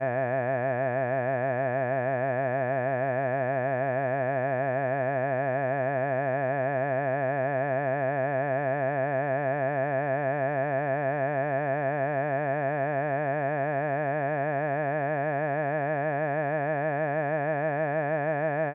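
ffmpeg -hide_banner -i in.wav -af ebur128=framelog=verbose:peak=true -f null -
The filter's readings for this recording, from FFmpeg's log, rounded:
Integrated loudness:
  I:         -27.8 LUFS
  Threshold: -37.8 LUFS
Loudness range:
  LRA:         0.6 LU
  Threshold: -47.8 LUFS
  LRA low:   -28.2 LUFS
  LRA high:  -27.6 LUFS
True peak:
  Peak:      -16.0 dBFS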